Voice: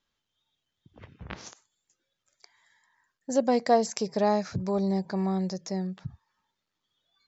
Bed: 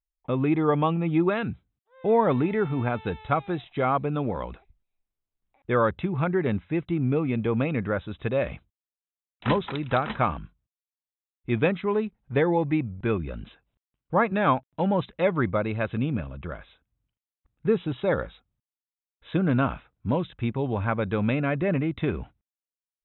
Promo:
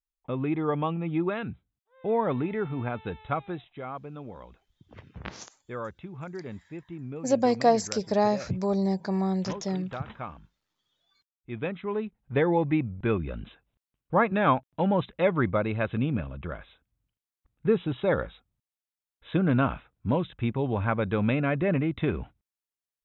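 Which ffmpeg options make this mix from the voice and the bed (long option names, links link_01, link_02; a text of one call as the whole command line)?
ffmpeg -i stem1.wav -i stem2.wav -filter_complex "[0:a]adelay=3950,volume=1dB[link_01];[1:a]volume=8dB,afade=type=out:start_time=3.47:duration=0.34:silence=0.375837,afade=type=in:start_time=11.43:duration=1.13:silence=0.223872[link_02];[link_01][link_02]amix=inputs=2:normalize=0" out.wav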